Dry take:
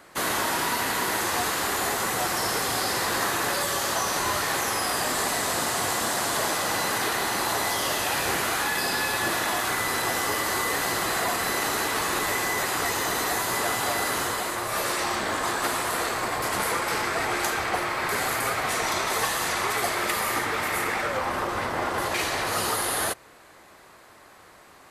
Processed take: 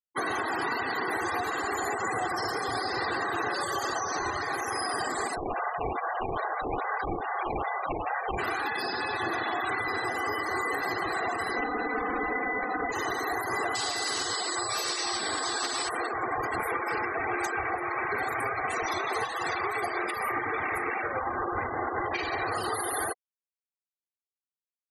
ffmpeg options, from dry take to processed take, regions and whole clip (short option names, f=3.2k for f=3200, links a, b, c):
-filter_complex "[0:a]asettb=1/sr,asplit=3[a][b][c];[a]atrim=end=5.354[d];[b]atrim=start=5.35:end=8.38,asetpts=PTS-STARTPTS,afade=t=in:d=0.004:c=qsin,afade=t=out:st=3.026:d=0.004:c=qsin,asuperpass=centerf=1000:order=4:qfactor=0.66,acrusher=samples=16:mix=1:aa=0.000001:lfo=1:lforange=25.6:lforate=2.4[e];[c]atrim=start=8.376[f];[d][e]acrossfade=d=0.004:c1=hsin:c2=qsin[g];[g][f]acrossfade=d=0.004:c1=qsin:c2=hsin,asettb=1/sr,asplit=3[h][i][j];[h]atrim=end=11.564[k];[i]atrim=start=11.56:end=12.92,asetpts=PTS-STARTPTS,afade=t=in:d=0.004:c=qsin,afade=t=out:st=1.356:d=0.004:c=qsin,lowshelf=f=440:g=8,aecho=1:1:4:0.91,atrim=end_sample=59976,acrossover=split=160|2800[l][m][n];[l]acompressor=threshold=-45dB:ratio=4[o];[m]acompressor=threshold=-24dB:ratio=4[p];[n]acompressor=threshold=-40dB:ratio=4[q];[o][p][q]amix=inputs=3:normalize=0[r];[j]atrim=start=12.916[s];[k][r]acrossfade=d=0.004:c1=hsin:c2=qsin[t];[t][s]acrossfade=d=0.004:c1=qsin:c2=hsin,asettb=1/sr,asplit=3[u][v][w];[u]atrim=end=13.754[x];[v]atrim=start=13.75:end=15.89,asetpts=PTS-STARTPTS,afade=t=in:d=0.004:c=qsin,afade=t=out:st=2.136:d=0.004:c=qsin,highpass=52,equalizer=f=4.8k:w=1.1:g=11.5,aeval=exprs='val(0)+0.0447*sin(2*PI*7900*n/s)':c=same[y];[w]atrim=start=15.886[z];[x][y]acrossfade=d=0.004:c1=hsin:c2=qsin[aa];[aa][z]acrossfade=d=0.004:c1=qsin:c2=hsin,afftfilt=real='re*gte(hypot(re,im),0.0562)':imag='im*gte(hypot(re,im),0.0562)':win_size=1024:overlap=0.75,aecho=1:1:2.6:0.46,alimiter=limit=-20.5dB:level=0:latency=1:release=306"